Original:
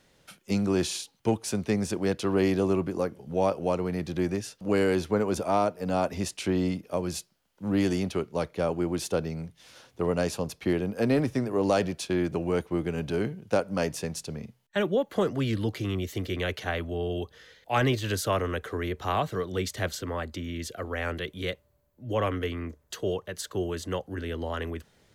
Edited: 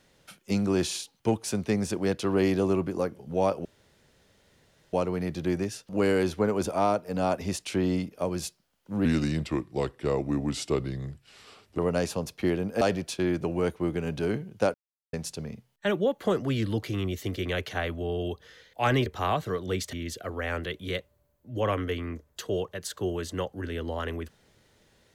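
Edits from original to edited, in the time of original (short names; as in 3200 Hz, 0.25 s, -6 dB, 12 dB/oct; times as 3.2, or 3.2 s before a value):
3.65 insert room tone 1.28 s
7.77–10.01 speed 82%
11.04–11.72 cut
13.65–14.04 mute
17.97–18.92 cut
19.79–20.47 cut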